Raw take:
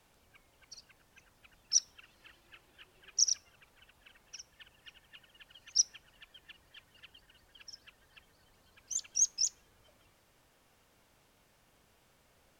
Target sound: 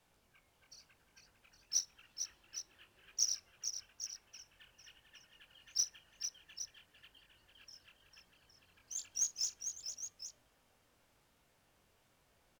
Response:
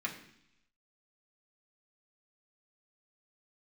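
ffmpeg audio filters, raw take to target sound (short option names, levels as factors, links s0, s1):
-filter_complex "[0:a]flanger=delay=17:depth=7.8:speed=0.96,acrusher=bits=5:mode=log:mix=0:aa=0.000001,asplit=2[s0][s1];[s1]aecho=0:1:45|450|813:0.141|0.422|0.282[s2];[s0][s2]amix=inputs=2:normalize=0,volume=0.708"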